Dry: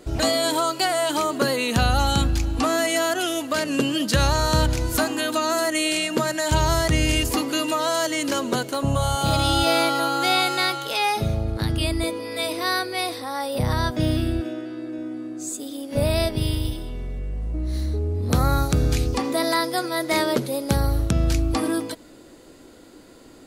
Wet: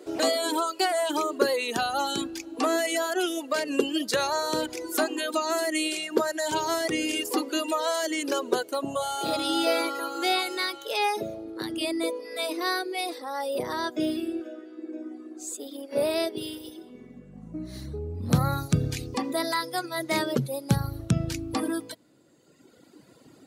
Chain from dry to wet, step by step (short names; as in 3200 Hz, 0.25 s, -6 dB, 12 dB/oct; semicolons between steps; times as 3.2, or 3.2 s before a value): high-pass sweep 370 Hz -> 130 Hz, 16.65–17.99; reverb removal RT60 1.9 s; gain -4 dB